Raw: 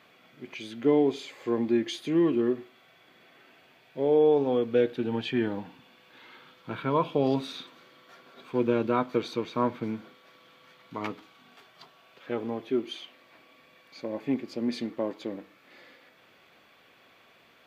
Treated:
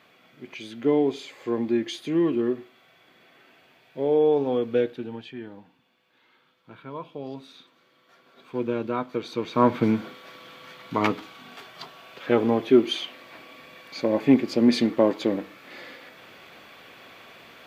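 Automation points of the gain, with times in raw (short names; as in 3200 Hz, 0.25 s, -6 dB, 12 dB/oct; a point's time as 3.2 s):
4.77 s +1 dB
5.36 s -11 dB
7.36 s -11 dB
8.52 s -2 dB
9.21 s -2 dB
9.79 s +11 dB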